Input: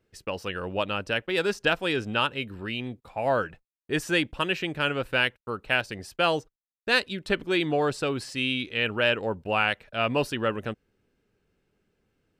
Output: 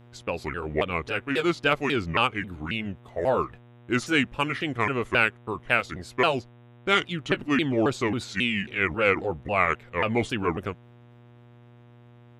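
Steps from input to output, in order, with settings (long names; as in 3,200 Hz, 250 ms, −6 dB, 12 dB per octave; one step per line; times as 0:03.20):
pitch shifter swept by a sawtooth −6 semitones, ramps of 271 ms
hum with harmonics 120 Hz, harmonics 32, −54 dBFS −7 dB per octave
level +2.5 dB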